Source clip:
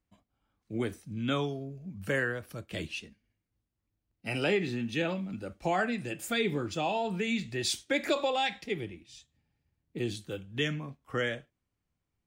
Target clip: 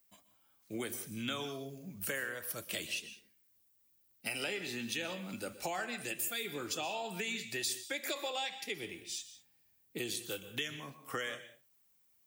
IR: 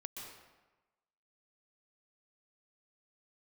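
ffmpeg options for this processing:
-filter_complex "[0:a]aemphasis=mode=production:type=riaa,acompressor=threshold=-39dB:ratio=6,asplit=2[link_01][link_02];[1:a]atrim=start_sample=2205,afade=type=out:start_time=0.26:duration=0.01,atrim=end_sample=11907[link_03];[link_02][link_03]afir=irnorm=-1:irlink=0,volume=-1.5dB[link_04];[link_01][link_04]amix=inputs=2:normalize=0"

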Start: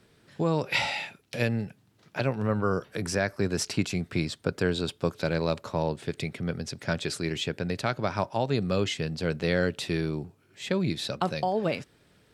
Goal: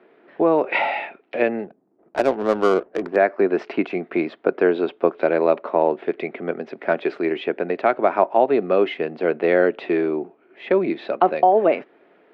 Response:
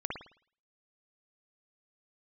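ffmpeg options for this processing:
-filter_complex "[0:a]highpass=frequency=270:width=0.5412,highpass=frequency=270:width=1.3066,equalizer=frequency=370:width_type=q:width=4:gain=5,equalizer=frequency=690:width_type=q:width=4:gain=7,equalizer=frequency=1600:width_type=q:width=4:gain=-3,lowpass=frequency=2300:width=0.5412,lowpass=frequency=2300:width=1.3066,asettb=1/sr,asplit=3[link_01][link_02][link_03];[link_01]atrim=end=1.644[link_04];[link_02]atrim=start=1.64:end=3.16,asetpts=PTS-STARTPTS,afade=type=in:duration=0.004:curve=qsin,afade=type=out:start_time=1.516:duration=0.004:curve=qsin,adynamicsmooth=sensitivity=3.5:basefreq=580[link_05];[link_03]atrim=start=3.156[link_06];[link_04][link_05]acrossfade=duration=0.004:curve1=hsin:curve2=qsin[link_07];[link_07][link_06]acrossfade=duration=0.004:curve1=qsin:curve2=hsin,volume=8.5dB"

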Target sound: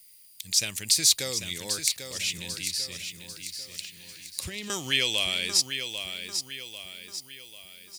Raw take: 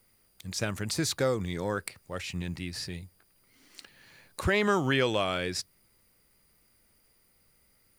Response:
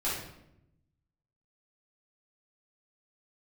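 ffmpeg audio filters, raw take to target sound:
-filter_complex "[0:a]asettb=1/sr,asplit=3[link_01][link_02][link_03];[link_01]atrim=end=2.384[link_04];[link_02]atrim=start=2.38:end=4.7,asetpts=PTS-STARTPTS,afade=type=in:duration=0.004:curve=qsin,afade=type=out:start_time=2.316:duration=0.004:curve=qsin,acrossover=split=310[link_05][link_06];[link_06]acompressor=threshold=-40dB:ratio=4[link_07];[link_05][link_07]amix=inputs=2:normalize=0[link_08];[link_03]atrim=start=4.696[link_09];[link_04][link_08]acrossfade=duration=0.004:curve1=hsin:curve2=qsin[link_10];[link_10][link_09]acrossfade=duration=0.004:curve1=qsin:curve2=hsin,aecho=1:1:794|1588|2382|3176|3970:0.398|0.183|0.0842|0.0388|0.0178,aexciter=amount=8.1:drive=6.5:freq=2100,volume=-9.5dB"

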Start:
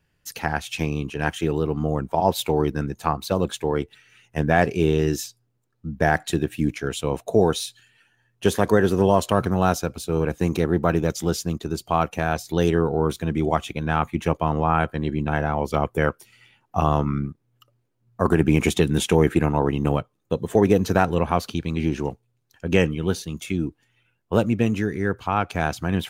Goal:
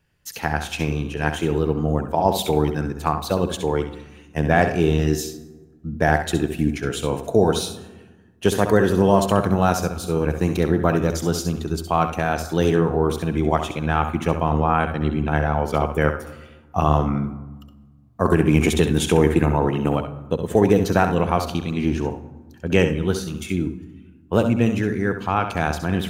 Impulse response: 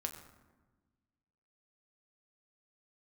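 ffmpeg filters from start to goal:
-filter_complex "[0:a]asplit=2[link_01][link_02];[1:a]atrim=start_sample=2205,adelay=66[link_03];[link_02][link_03]afir=irnorm=-1:irlink=0,volume=-7dB[link_04];[link_01][link_04]amix=inputs=2:normalize=0,volume=1dB"

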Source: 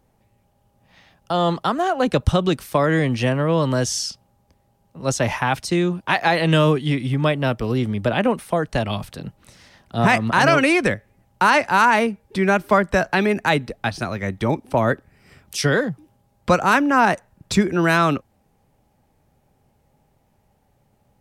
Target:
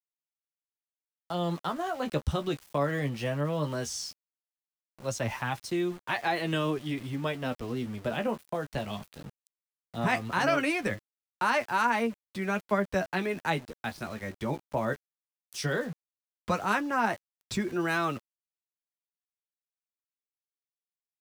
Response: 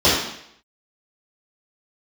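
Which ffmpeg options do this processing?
-af "flanger=delay=8.4:depth=5.7:regen=33:speed=0.17:shape=sinusoidal,aeval=exprs='val(0)*gte(abs(val(0)),0.0141)':channel_layout=same,volume=-7.5dB"

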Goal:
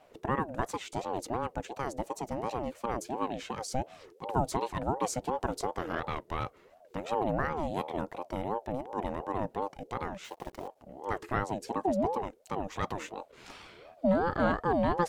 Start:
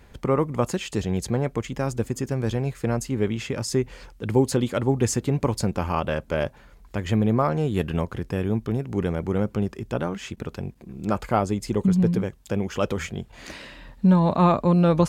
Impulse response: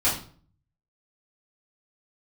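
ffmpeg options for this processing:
-filter_complex "[0:a]asettb=1/sr,asplit=3[link_01][link_02][link_03];[link_01]atrim=end=10.244[link_04];[link_02]atrim=start=10.24:end=10.68,asetpts=PTS-STARTPTS,afade=type=in:duration=0.004:curve=qsin,afade=type=out:start_time=0.436:duration=0.004:curve=qsin,acrusher=bits=8:dc=4:mix=0:aa=0.000001[link_05];[link_03]atrim=start=10.676[link_06];[link_04][link_05]acrossfade=duration=0.004:curve1=hsin:curve2=qsin[link_07];[link_07][link_06]acrossfade=duration=0.004:curve1=qsin:curve2=hsin,aeval=exprs='val(0)*sin(2*PI*540*n/s+540*0.3/2.8*sin(2*PI*2.8*n/s))':channel_layout=same,volume=-6.5dB"

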